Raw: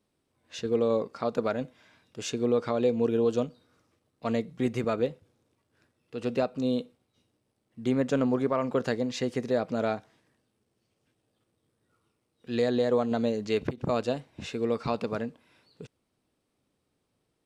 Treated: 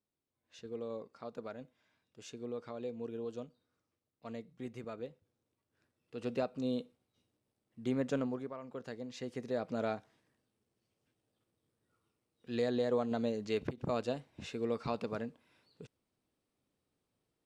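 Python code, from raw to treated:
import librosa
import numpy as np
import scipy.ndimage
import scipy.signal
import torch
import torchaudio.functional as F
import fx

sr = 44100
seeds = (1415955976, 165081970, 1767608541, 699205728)

y = fx.gain(x, sr, db=fx.line((5.05, -16.0), (6.16, -7.5), (8.15, -7.5), (8.6, -19.0), (9.75, -7.0)))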